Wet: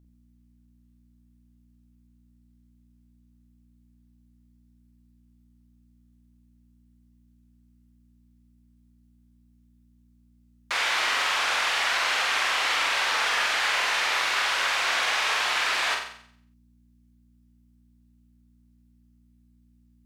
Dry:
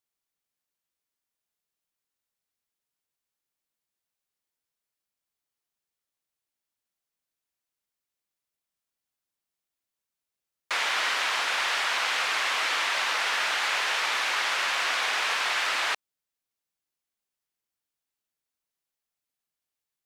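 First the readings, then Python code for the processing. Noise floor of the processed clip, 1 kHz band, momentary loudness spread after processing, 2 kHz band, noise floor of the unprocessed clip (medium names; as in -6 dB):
-61 dBFS, +2.0 dB, 2 LU, +2.0 dB, under -85 dBFS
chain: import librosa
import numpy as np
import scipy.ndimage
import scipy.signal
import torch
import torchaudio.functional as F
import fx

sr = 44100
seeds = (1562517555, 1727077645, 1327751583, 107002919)

y = fx.add_hum(x, sr, base_hz=60, snr_db=26)
y = fx.room_flutter(y, sr, wall_m=7.8, rt60_s=0.61)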